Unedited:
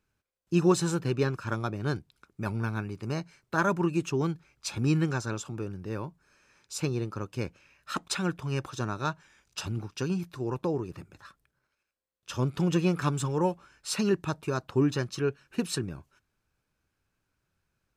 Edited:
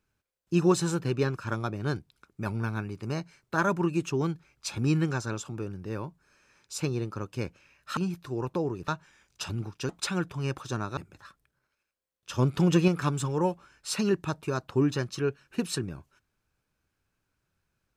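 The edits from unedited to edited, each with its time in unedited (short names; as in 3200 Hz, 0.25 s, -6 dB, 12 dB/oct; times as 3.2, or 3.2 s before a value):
7.97–9.05 swap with 10.06–10.97
12.38–12.88 gain +3.5 dB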